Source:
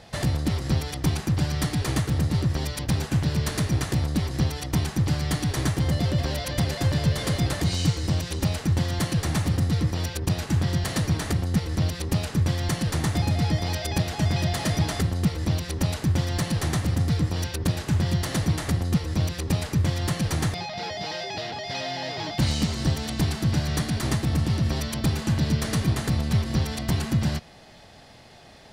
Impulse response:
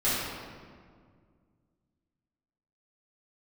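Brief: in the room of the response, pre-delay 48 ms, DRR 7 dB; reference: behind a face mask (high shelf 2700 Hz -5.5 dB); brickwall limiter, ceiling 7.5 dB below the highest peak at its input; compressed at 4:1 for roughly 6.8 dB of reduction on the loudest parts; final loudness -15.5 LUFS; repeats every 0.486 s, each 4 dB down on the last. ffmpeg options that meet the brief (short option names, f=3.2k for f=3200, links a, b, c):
-filter_complex "[0:a]acompressor=threshold=-26dB:ratio=4,alimiter=limit=-22dB:level=0:latency=1,aecho=1:1:486|972|1458|1944|2430|2916|3402|3888|4374:0.631|0.398|0.25|0.158|0.0994|0.0626|0.0394|0.0249|0.0157,asplit=2[a][b];[1:a]atrim=start_sample=2205,adelay=48[c];[b][c]afir=irnorm=-1:irlink=0,volume=-19.5dB[d];[a][d]amix=inputs=2:normalize=0,highshelf=f=2.7k:g=-5.5,volume=14dB"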